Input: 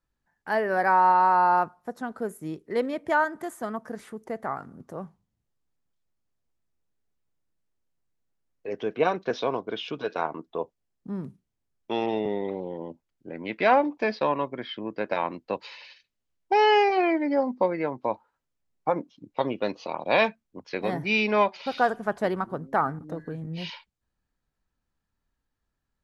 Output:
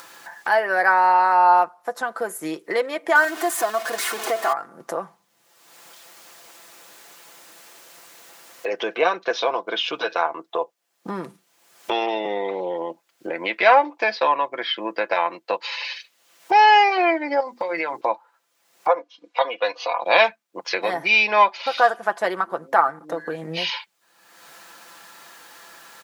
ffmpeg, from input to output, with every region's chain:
ffmpeg -i in.wav -filter_complex "[0:a]asettb=1/sr,asplit=3[link_01][link_02][link_03];[link_01]atrim=end=3.154[link_04];[link_02]atrim=start=3.15:end=4.53,asetpts=PTS-STARTPTS,afade=type=in:duration=0.004:curve=qsin,afade=type=out:start_time=1.376:duration=0.004:curve=qsin,aeval=exprs='val(0)+0.5*0.0168*sgn(val(0))':channel_layout=same,aecho=1:1:2.8:0.65,atrim=end_sample=60858[link_05];[link_03]atrim=start=4.526[link_06];[link_04][link_05]acrossfade=duration=0.004:curve1=hsin:curve2=qsin[link_07];[link_07][link_06]acrossfade=duration=0.004:curve1=qsin:curve2=hsin,asettb=1/sr,asplit=3[link_08][link_09][link_10];[link_08]atrim=end=17.404[link_11];[link_09]atrim=start=17.4:end=18.01,asetpts=PTS-STARTPTS,afade=type=in:duration=0.004:curve=qsin,afade=type=out:start_time=0.606:duration=0.004:curve=qsin,highshelf=frequency=2200:gain=10,bandreject=frequency=60:width_type=h:width=6,bandreject=frequency=120:width_type=h:width=6,bandreject=frequency=180:width_type=h:width=6,bandreject=frequency=240:width_type=h:width=6,bandreject=frequency=300:width_type=h:width=6,bandreject=frequency=360:width_type=h:width=6,bandreject=frequency=420:width_type=h:width=6,acompressor=threshold=-29dB:ratio=6:attack=3.2:release=140:knee=1:detection=peak[link_12];[link_10]atrim=start=18.006[link_13];[link_11][link_12]acrossfade=duration=0.004:curve1=hsin:curve2=qsin[link_14];[link_14][link_13]acrossfade=duration=0.004:curve1=qsin:curve2=hsin,asettb=1/sr,asplit=3[link_15][link_16][link_17];[link_15]atrim=end=18.884[link_18];[link_16]atrim=start=18.88:end=20.02,asetpts=PTS-STARTPTS,afade=type=in:duration=0.004:curve=qsin,afade=type=out:start_time=1.136:duration=0.004:curve=qsin,highpass=510,lowpass=5000,aecho=1:1:4.1:0.75,atrim=end_sample=50274[link_19];[link_17]atrim=start=20.016[link_20];[link_18][link_19]acrossfade=duration=0.004:curve1=hsin:curve2=qsin[link_21];[link_21][link_20]acrossfade=duration=0.004:curve1=qsin:curve2=hsin,highpass=630,aecho=1:1:5.9:0.49,acompressor=mode=upward:threshold=-25dB:ratio=2.5,volume=7dB" out.wav

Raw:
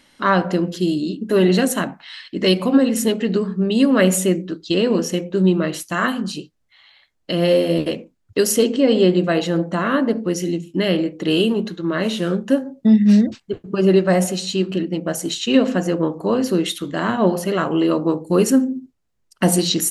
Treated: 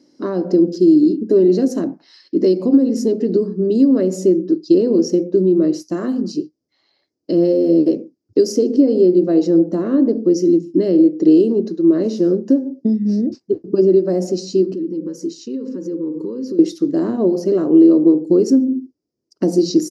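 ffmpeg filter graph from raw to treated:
ffmpeg -i in.wav -filter_complex "[0:a]asettb=1/sr,asplit=3[link_01][link_02][link_03];[link_01]atrim=end=14.734[link_04];[link_02]atrim=start=14.73:end=16.59,asetpts=PTS-STARTPTS,afade=type=in:duration=0.004:curve=qsin,afade=type=out:start_time=1.856:duration=0.004:curve=qsin,acompressor=threshold=-27dB:ratio=12:attack=3.2:release=140:knee=1:detection=peak,asuperstop=centerf=690:order=20:qfactor=2.4[link_05];[link_03]atrim=start=16.586[link_06];[link_04][link_05]acrossfade=duration=0.004:curve1=hsin:curve2=qsin[link_07];[link_07][link_06]acrossfade=duration=0.004:curve1=qsin:curve2=hsin,highpass=140,acompressor=threshold=-16dB:ratio=6,firequalizer=gain_entry='entry(200,0);entry(310,13);entry(490,3);entry(820,-9);entry(1400,-15);entry(3300,-21);entry(5000,4);entry(8700,-19)':delay=0.05:min_phase=1" out.wav

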